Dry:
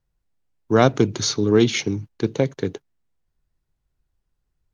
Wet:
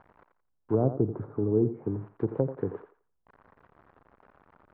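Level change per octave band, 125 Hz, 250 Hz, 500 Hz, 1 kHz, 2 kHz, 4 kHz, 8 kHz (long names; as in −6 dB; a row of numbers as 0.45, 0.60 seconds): −6.0 dB, −8.5 dB, −8.0 dB, −15.0 dB, below −25 dB, below −40 dB, below −40 dB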